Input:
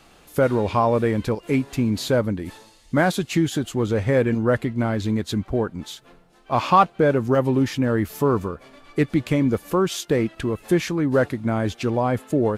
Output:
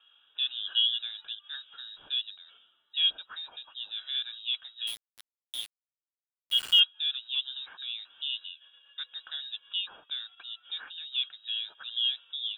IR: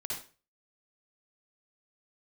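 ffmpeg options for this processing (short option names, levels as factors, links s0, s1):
-filter_complex "[0:a]asplit=3[s0][s1][s2];[s0]bandpass=f=730:t=q:w=8,volume=1[s3];[s1]bandpass=f=1090:t=q:w=8,volume=0.501[s4];[s2]bandpass=f=2440:t=q:w=8,volume=0.355[s5];[s3][s4][s5]amix=inputs=3:normalize=0,lowpass=f=3400:t=q:w=0.5098,lowpass=f=3400:t=q:w=0.6013,lowpass=f=3400:t=q:w=0.9,lowpass=f=3400:t=q:w=2.563,afreqshift=-4000,asettb=1/sr,asplit=3[s6][s7][s8];[s6]atrim=end=4.874[s9];[s7]atrim=start=4.87:end=6.8,asetpts=PTS-STARTPTS,afade=t=in:d=0.004:c=qsin,afade=t=out:st=1.926:d=0.004:c=qsin,aeval=exprs='val(0)*gte(abs(val(0)),0.0211)':c=same[s10];[s8]atrim=start=6.796[s11];[s9][s10]acrossfade=d=0.004:c1=hsin:c2=qsin[s12];[s12][s11]acrossfade=d=0.004:c1=qsin:c2=hsin"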